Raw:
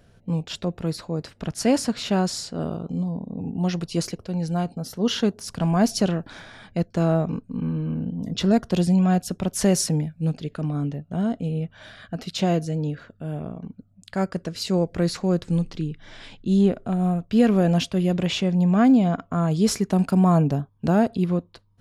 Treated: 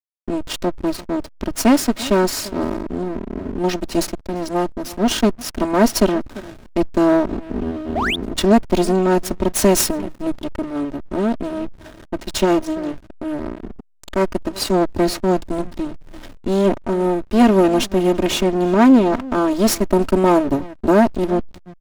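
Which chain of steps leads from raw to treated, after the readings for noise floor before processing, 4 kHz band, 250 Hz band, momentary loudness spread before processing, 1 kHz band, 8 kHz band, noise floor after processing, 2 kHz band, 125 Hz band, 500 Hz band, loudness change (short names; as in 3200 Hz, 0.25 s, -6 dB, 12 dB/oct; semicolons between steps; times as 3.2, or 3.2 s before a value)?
-57 dBFS, +5.0 dB, +4.0 dB, 12 LU, +8.0 dB, +6.5 dB, -45 dBFS, +8.5 dB, -4.5 dB, +8.0 dB, +4.5 dB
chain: minimum comb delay 3.2 ms; outdoor echo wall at 59 m, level -19 dB; painted sound rise, 7.95–8.16, 550–3900 Hz -27 dBFS; in parallel at -2.5 dB: compressor 4:1, threshold -37 dBFS, peak gain reduction 19.5 dB; on the sum: high shelf 8300 Hz +6.5 dB; backlash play -29.5 dBFS; gain +5.5 dB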